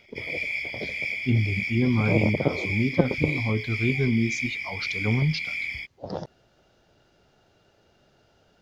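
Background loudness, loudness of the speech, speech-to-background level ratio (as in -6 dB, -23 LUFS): -29.5 LUFS, -26.5 LUFS, 3.0 dB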